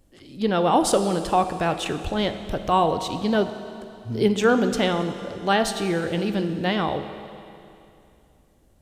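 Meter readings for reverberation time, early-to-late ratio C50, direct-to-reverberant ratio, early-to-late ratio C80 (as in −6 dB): 2.7 s, 9.5 dB, 8.0 dB, 10.0 dB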